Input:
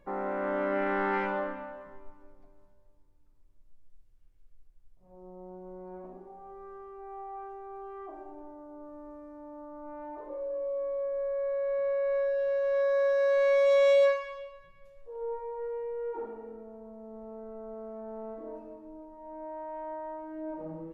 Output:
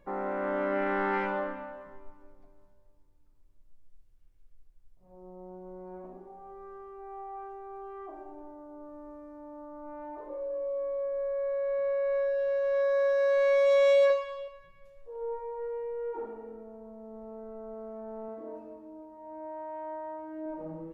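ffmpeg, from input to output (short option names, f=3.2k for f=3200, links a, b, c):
-filter_complex "[0:a]asettb=1/sr,asplit=3[a][b][c];[a]atrim=end=14.084[d];[b]atrim=start=14.08:end=14.48,asetpts=PTS-STARTPTS,afade=t=in:d=0.004:c=qsin,afade=t=out:st=0.396:d=0.004:c=qsin,asplit=2[e][f];[f]adelay=20,volume=-5.5dB[g];[e][g]amix=inputs=2:normalize=0,atrim=end_sample=17640[h];[c]atrim=start=14.476[i];[d][h]acrossfade=d=0.004:c1=hsin:c2=qsin[j];[j][i]acrossfade=d=0.004:c1=qsin:c2=hsin,asettb=1/sr,asplit=3[k][l][m];[k]atrim=end=18.284[n];[l]atrim=start=18.28:end=20.46,asetpts=PTS-STARTPTS,afade=t=in:d=0.004:c=qsin,afade=t=out:st=2.176:d=0.004:c=qsin,highpass=f=41:w=0.5412,highpass=f=41:w=1.3066[o];[m]atrim=start=20.456[p];[n][o]acrossfade=d=0.004:c1=hsin:c2=qsin[q];[q][p]acrossfade=d=0.004:c1=qsin:c2=hsin"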